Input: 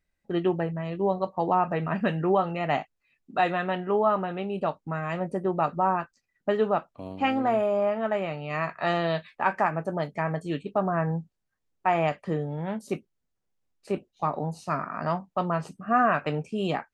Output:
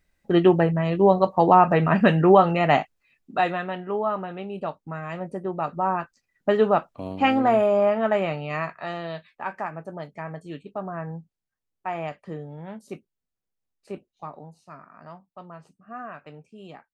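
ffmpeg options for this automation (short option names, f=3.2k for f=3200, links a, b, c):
-af "volume=16dB,afade=t=out:st=2.5:d=1.2:silence=0.281838,afade=t=in:st=5.62:d=1:silence=0.421697,afade=t=out:st=8.29:d=0.58:silence=0.266073,afade=t=out:st=13.93:d=0.64:silence=0.354813"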